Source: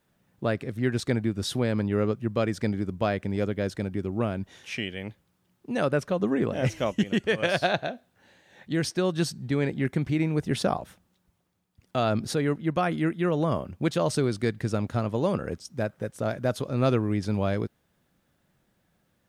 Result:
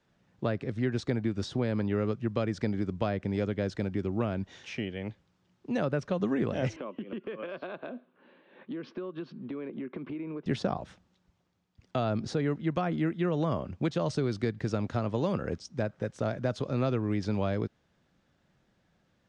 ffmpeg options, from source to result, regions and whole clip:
-filter_complex "[0:a]asettb=1/sr,asplit=3[a][b][c];[a]atrim=end=6.764[d];[b]atrim=start=6.76:end=10.46,asetpts=PTS-STARTPTS,afade=t=in:d=0.004:c=qsin,afade=t=out:st=3.696:d=0.004:c=qsin,highpass=f=190:w=0.5412,highpass=f=190:w=1.3066,equalizer=f=250:t=q:w=4:g=5,equalizer=f=370:t=q:w=4:g=6,equalizer=f=530:t=q:w=4:g=3,equalizer=f=760:t=q:w=4:g=-8,equalizer=f=1.1k:t=q:w=4:g=8,equalizer=f=1.9k:t=q:w=4:g=-8,lowpass=f=2.8k:w=0.5412,lowpass=f=2.8k:w=1.3066,acompressor=threshold=-34dB:ratio=8:attack=3.2:release=140:knee=1:detection=peak[e];[c]atrim=start=10.456[f];[d][e]acrossfade=d=0.004:c1=hsin:c2=qsin[g];[g][f]acrossfade=d=0.004:c1=qsin:c2=hsin,lowpass=f=6.6k:w=0.5412,lowpass=f=6.6k:w=1.3066,acrossover=split=230|1200[h][i][j];[h]acompressor=threshold=-31dB:ratio=4[k];[i]acompressor=threshold=-29dB:ratio=4[l];[j]acompressor=threshold=-42dB:ratio=4[m];[k][l][m]amix=inputs=3:normalize=0"

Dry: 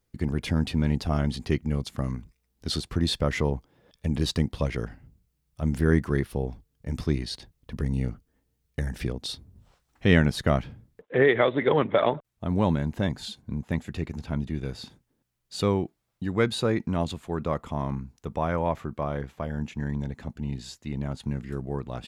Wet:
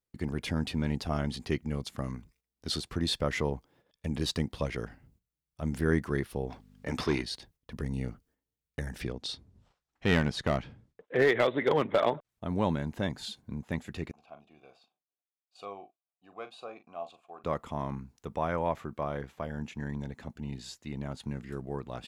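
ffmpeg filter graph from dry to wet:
-filter_complex "[0:a]asettb=1/sr,asplit=3[a][b][c];[a]atrim=end=6.504[d];[b]atrim=start=6.5:end=7.22,asetpts=PTS-STARTPTS,afade=t=in:d=0.004:c=qsin,afade=t=out:st=0.716:d=0.004:c=qsin,aeval=exprs='val(0)+0.00355*(sin(2*PI*50*n/s)+sin(2*PI*2*50*n/s)/2+sin(2*PI*3*50*n/s)/3+sin(2*PI*4*50*n/s)/4+sin(2*PI*5*50*n/s)/5)':c=same,asplit=2[e][f];[f]highpass=f=720:p=1,volume=21dB,asoftclip=type=tanh:threshold=-11.5dB[g];[e][g]amix=inputs=2:normalize=0,lowpass=f=2.8k:p=1,volume=-6dB[h];[c]atrim=start=7.216[i];[d][h]acrossfade=d=0.004:c1=hsin:c2=qsin[j];[j][i]acrossfade=d=0.004:c1=qsin:c2=hsin,asettb=1/sr,asplit=3[k][l][m];[k]atrim=end=9.024[n];[l]atrim=start=9.02:end=12.29,asetpts=PTS-STARTPTS,afade=t=in:d=0.004:c=qsin,afade=t=out:st=3.266:d=0.004:c=qsin,lowpass=7.1k,aeval=exprs='clip(val(0),-1,0.168)':c=same[o];[m]atrim=start=12.286[p];[n][o]acrossfade=d=0.004:c1=hsin:c2=qsin[q];[q][p]acrossfade=d=0.004:c1=qsin:c2=hsin,asettb=1/sr,asplit=3[r][s][t];[r]atrim=end=14.114[u];[s]atrim=start=14.11:end=17.44,asetpts=PTS-STARTPTS,afade=t=in:d=0.004:c=qsin,afade=t=out:st=3.326:d=0.004:c=qsin,asplit=3[v][w][x];[v]bandpass=f=730:t=q:w=8,volume=0dB[y];[w]bandpass=f=1.09k:t=q:w=8,volume=-6dB[z];[x]bandpass=f=2.44k:t=q:w=8,volume=-9dB[aa];[y][z][aa]amix=inputs=3:normalize=0,highshelf=f=5.2k:g=10.5,asplit=2[ab][ac];[ac]adelay=40,volume=-11dB[ad];[ab][ad]amix=inputs=2:normalize=0,atrim=end_sample=146853[ae];[t]atrim=start=17.436[af];[u][ae]acrossfade=d=0.004:c1=hsin:c2=qsin[ag];[ag][af]acrossfade=d=0.004:c1=qsin:c2=hsin,agate=range=-11dB:threshold=-57dB:ratio=16:detection=peak,lowshelf=f=210:g=-6.5,volume=-2.5dB"

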